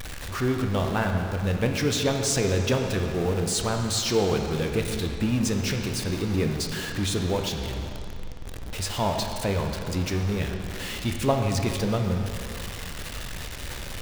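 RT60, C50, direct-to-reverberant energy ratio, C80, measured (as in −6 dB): 2.5 s, 4.5 dB, 3.0 dB, 5.5 dB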